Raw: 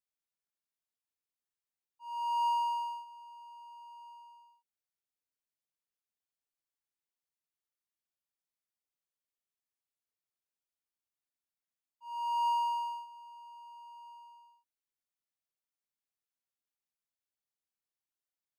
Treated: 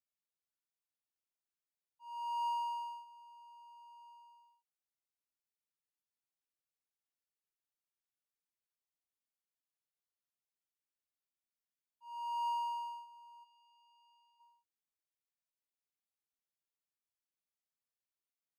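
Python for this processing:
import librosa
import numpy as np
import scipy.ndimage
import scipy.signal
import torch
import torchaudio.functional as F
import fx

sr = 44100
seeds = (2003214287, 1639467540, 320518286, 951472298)

y = fx.bandpass_q(x, sr, hz=3500.0, q=1.2, at=(13.43, 14.39), fade=0.02)
y = y * 10.0 ** (-6.0 / 20.0)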